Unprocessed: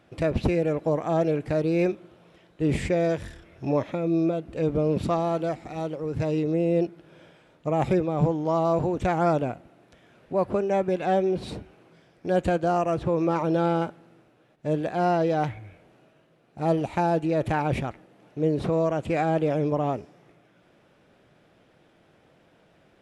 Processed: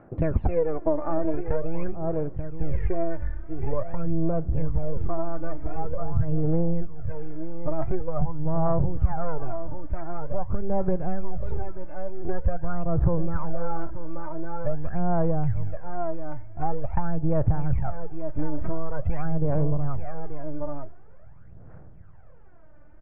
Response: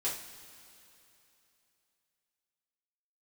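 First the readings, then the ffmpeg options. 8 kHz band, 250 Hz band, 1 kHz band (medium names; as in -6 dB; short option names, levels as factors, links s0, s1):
no reading, -4.0 dB, -6.0 dB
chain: -filter_complex "[0:a]aeval=exprs='if(lt(val(0),0),0.708*val(0),val(0))':c=same,asplit=2[s0][s1];[1:a]atrim=start_sample=2205,asetrate=34839,aresample=44100[s2];[s1][s2]afir=irnorm=-1:irlink=0,volume=0.0531[s3];[s0][s3]amix=inputs=2:normalize=0,asubboost=boost=10:cutoff=89,aecho=1:1:883:0.266,aphaser=in_gain=1:out_gain=1:delay=3.4:decay=0.69:speed=0.46:type=sinusoidal,lowpass=f=1600:w=0.5412,lowpass=f=1600:w=1.3066,acompressor=threshold=0.141:ratio=5"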